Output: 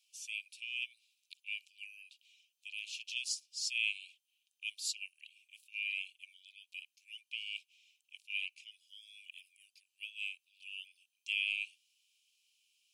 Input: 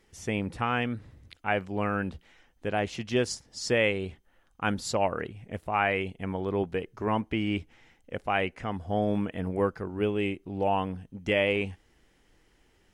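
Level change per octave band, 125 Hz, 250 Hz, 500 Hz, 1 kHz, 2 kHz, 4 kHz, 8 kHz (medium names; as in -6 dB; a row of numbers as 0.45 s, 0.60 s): under -40 dB, under -40 dB, under -40 dB, under -40 dB, -7.0 dB, -1.5 dB, -1.5 dB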